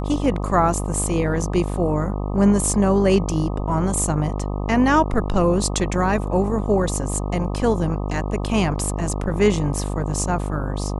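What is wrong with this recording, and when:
buzz 50 Hz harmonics 25 -25 dBFS

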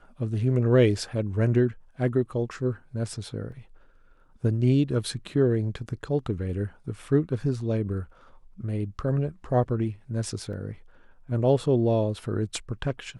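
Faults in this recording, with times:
3.52 gap 2.7 ms
10.53 gap 2.7 ms

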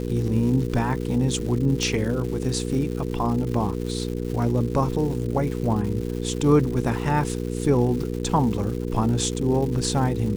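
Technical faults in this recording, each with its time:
crackle 340/s -32 dBFS
hum 60 Hz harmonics 8 -28 dBFS
1.83 pop

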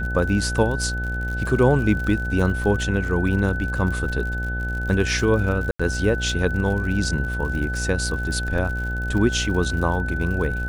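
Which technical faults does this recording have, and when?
buzz 60 Hz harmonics 14 -27 dBFS
crackle 74/s -30 dBFS
tone 1500 Hz -28 dBFS
5.71–5.79 gap 85 ms

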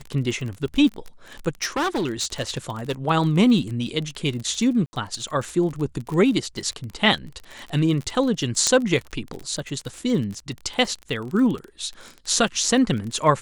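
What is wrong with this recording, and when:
crackle 31/s -28 dBFS
1.62–2.92 clipped -20 dBFS
4.86–4.93 gap 70 ms
8.67 pop -6 dBFS

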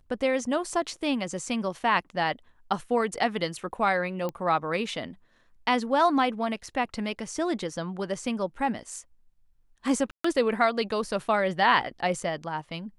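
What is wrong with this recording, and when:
4.29 pop -19 dBFS
10.11–10.24 gap 0.134 s

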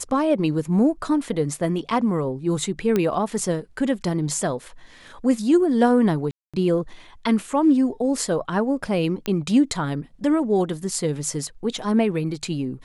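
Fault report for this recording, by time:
2.96 pop -9 dBFS
6.31–6.54 gap 0.226 s
9.26 pop -12 dBFS

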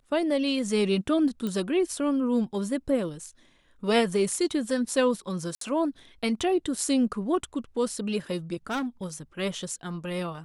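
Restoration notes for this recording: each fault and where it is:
1.47 pop -19 dBFS
5.55–5.61 gap 63 ms
8.7–9.05 clipped -26.5 dBFS

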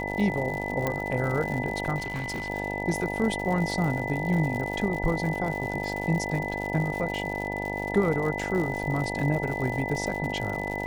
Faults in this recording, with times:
buzz 50 Hz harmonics 19 -33 dBFS
crackle 130/s -32 dBFS
tone 2000 Hz -33 dBFS
0.87 pop -13 dBFS
1.97–2.5 clipped -27.5 dBFS

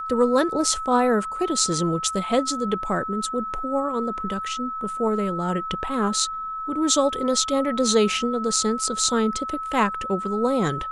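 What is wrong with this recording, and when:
tone 1300 Hz -28 dBFS

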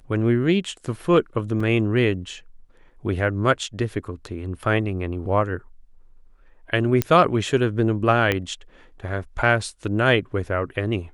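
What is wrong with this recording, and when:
1.6 gap 4 ms
7.02 pop -5 dBFS
8.32 pop -8 dBFS

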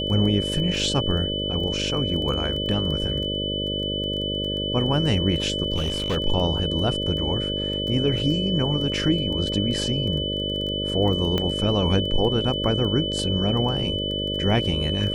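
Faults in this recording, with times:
buzz 50 Hz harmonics 12 -29 dBFS
crackle 12/s -30 dBFS
tone 3000 Hz -27 dBFS
5.75–6.17 clipped -20 dBFS
11.38 pop -11 dBFS

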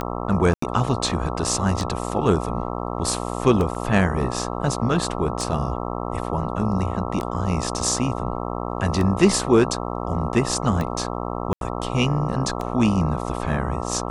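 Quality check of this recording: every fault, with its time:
buzz 60 Hz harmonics 22 -28 dBFS
tick 33 1/3 rpm -14 dBFS
0.54–0.62 gap 84 ms
3.75 gap 2.2 ms
11.53–11.61 gap 82 ms

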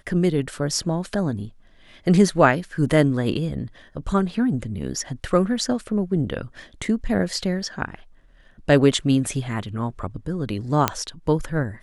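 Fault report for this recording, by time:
10.88 pop -3 dBFS

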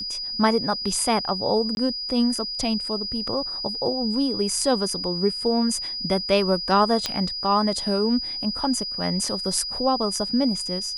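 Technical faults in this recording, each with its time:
tone 4900 Hz -28 dBFS
1.75–1.77 gap 21 ms
7.06 pop -9 dBFS

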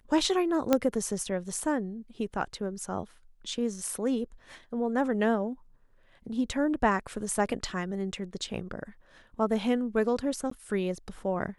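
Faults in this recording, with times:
0.73 pop -9 dBFS
10.5–10.51 gap 14 ms

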